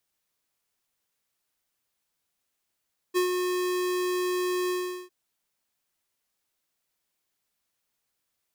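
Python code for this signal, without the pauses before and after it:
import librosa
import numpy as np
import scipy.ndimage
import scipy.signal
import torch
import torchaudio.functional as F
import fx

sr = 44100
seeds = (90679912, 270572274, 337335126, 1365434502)

y = fx.adsr_tone(sr, wave='square', hz=362.0, attack_ms=30.0, decay_ms=106.0, sustain_db=-5.0, held_s=1.56, release_ms=393.0, level_db=-22.5)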